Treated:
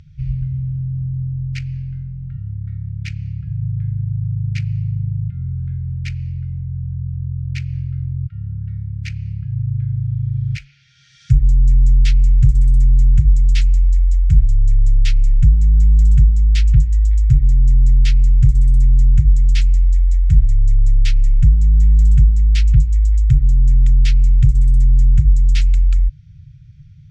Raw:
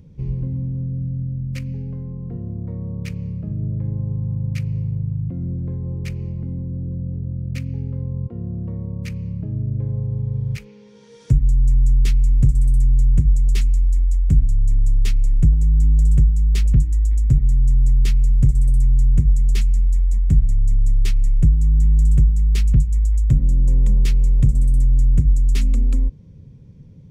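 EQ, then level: brick-wall FIR band-stop 160–1300 Hz; air absorption 150 m; high shelf 2800 Hz +10 dB; +3.5 dB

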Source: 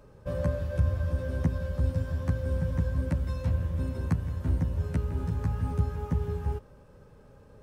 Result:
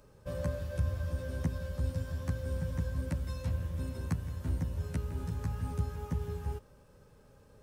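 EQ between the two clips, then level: high shelf 3100 Hz +10 dB; -6.0 dB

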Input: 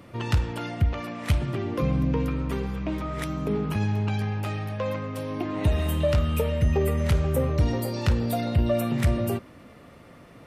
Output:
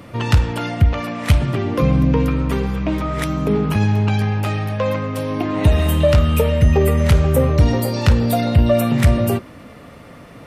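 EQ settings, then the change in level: notch 360 Hz, Q 12; +9.0 dB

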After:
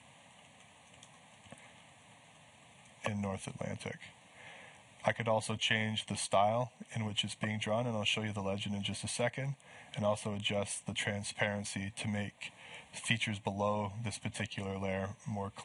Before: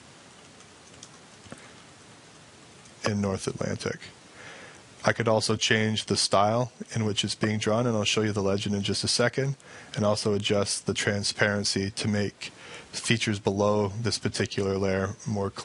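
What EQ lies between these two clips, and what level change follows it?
low shelf 76 Hz -11.5 dB; fixed phaser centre 1400 Hz, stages 6; -4.5 dB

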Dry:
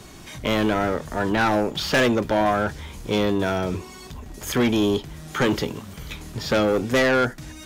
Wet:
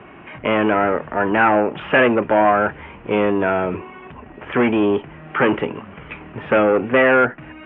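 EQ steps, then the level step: HPF 360 Hz 6 dB/oct; elliptic low-pass 2800 Hz, stop band 40 dB; air absorption 230 m; +8.5 dB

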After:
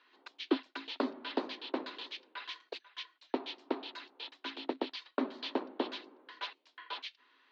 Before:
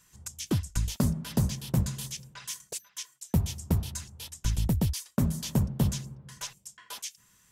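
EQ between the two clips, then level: rippled Chebyshev high-pass 260 Hz, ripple 3 dB; Chebyshev low-pass 4200 Hz, order 5; +4.5 dB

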